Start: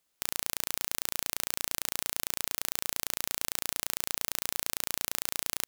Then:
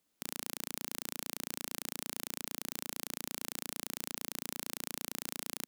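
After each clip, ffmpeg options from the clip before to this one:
-af "equalizer=f=240:t=o:w=1.5:g=11.5,alimiter=limit=-7dB:level=0:latency=1,volume=-3dB"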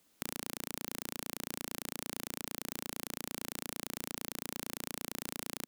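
-filter_complex "[0:a]acrossover=split=720|3300[a][b][c];[a]acompressor=threshold=-50dB:ratio=4[d];[b]acompressor=threshold=-54dB:ratio=4[e];[c]acompressor=threshold=-46dB:ratio=4[f];[d][e][f]amix=inputs=3:normalize=0,volume=9dB"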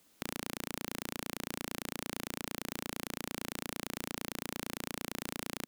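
-af "asoftclip=type=tanh:threshold=-23dB,volume=3.5dB"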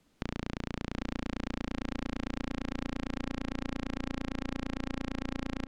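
-filter_complex "[0:a]acrossover=split=7500[a][b];[b]acompressor=threshold=-56dB:ratio=4:attack=1:release=60[c];[a][c]amix=inputs=2:normalize=0,aemphasis=mode=reproduction:type=bsi,asplit=2[d][e];[e]adelay=760,lowpass=f=2k:p=1,volume=-6dB,asplit=2[f][g];[g]adelay=760,lowpass=f=2k:p=1,volume=0.48,asplit=2[h][i];[i]adelay=760,lowpass=f=2k:p=1,volume=0.48,asplit=2[j][k];[k]adelay=760,lowpass=f=2k:p=1,volume=0.48,asplit=2[l][m];[m]adelay=760,lowpass=f=2k:p=1,volume=0.48,asplit=2[n][o];[o]adelay=760,lowpass=f=2k:p=1,volume=0.48[p];[d][f][h][j][l][n][p]amix=inputs=7:normalize=0"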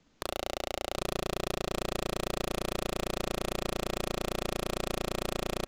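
-filter_complex "[0:a]aresample=16000,acrusher=bits=4:mode=log:mix=0:aa=0.000001,aresample=44100,aeval=exprs='0.106*(cos(1*acos(clip(val(0)/0.106,-1,1)))-cos(1*PI/2))+0.0473*(cos(8*acos(clip(val(0)/0.106,-1,1)))-cos(8*PI/2))':c=same,asplit=2[a][b];[b]adelay=40,volume=-13dB[c];[a][c]amix=inputs=2:normalize=0,volume=1.5dB"

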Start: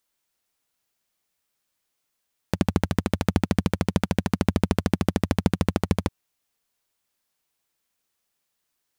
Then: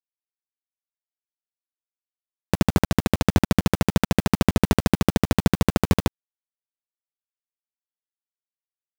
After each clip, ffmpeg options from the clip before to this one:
-af "acrusher=bits=4:mix=0:aa=0.000001,volume=3dB"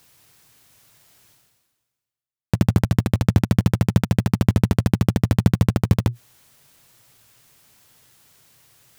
-af "equalizer=f=120:w=1.7:g=15,areverse,acompressor=mode=upward:threshold=-18dB:ratio=2.5,areverse,volume=-3.5dB"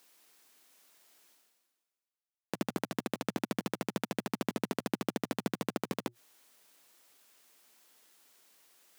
-af "highpass=f=250:w=0.5412,highpass=f=250:w=1.3066,volume=-8.5dB"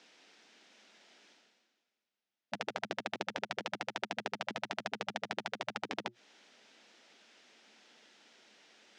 -af "afftfilt=real='re*lt(hypot(re,im),0.0708)':imag='im*lt(hypot(re,im),0.0708)':win_size=1024:overlap=0.75,acompressor=threshold=-47dB:ratio=1.5,highpass=200,equalizer=f=210:t=q:w=4:g=9,equalizer=f=1.1k:t=q:w=4:g=-8,equalizer=f=4.4k:t=q:w=4:g=-4,lowpass=f=5.2k:w=0.5412,lowpass=f=5.2k:w=1.3066,volume=9dB"

